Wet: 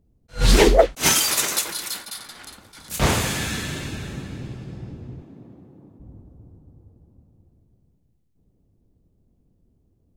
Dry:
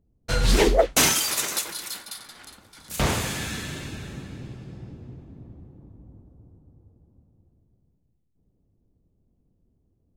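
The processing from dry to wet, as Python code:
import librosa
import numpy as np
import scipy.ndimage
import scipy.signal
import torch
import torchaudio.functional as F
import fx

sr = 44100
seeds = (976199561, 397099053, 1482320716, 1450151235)

y = fx.highpass(x, sr, hz=180.0, slope=12, at=(5.22, 6.0))
y = fx.attack_slew(y, sr, db_per_s=290.0)
y = y * librosa.db_to_amplitude(4.5)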